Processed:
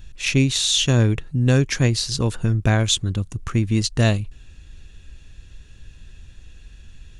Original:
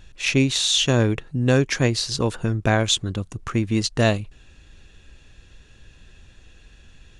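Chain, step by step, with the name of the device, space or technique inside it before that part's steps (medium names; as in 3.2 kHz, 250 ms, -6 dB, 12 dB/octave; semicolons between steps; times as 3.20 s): smiley-face EQ (bass shelf 160 Hz +7.5 dB; peaking EQ 640 Hz -4 dB 2.6 oct; treble shelf 10 kHz +7 dB)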